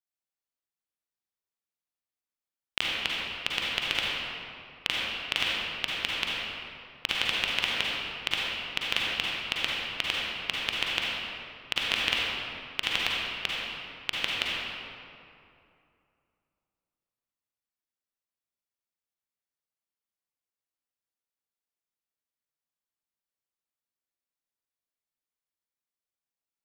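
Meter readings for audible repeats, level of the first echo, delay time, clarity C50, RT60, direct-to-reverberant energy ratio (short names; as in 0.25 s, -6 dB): none, none, none, -4.5 dB, 2.6 s, -5.0 dB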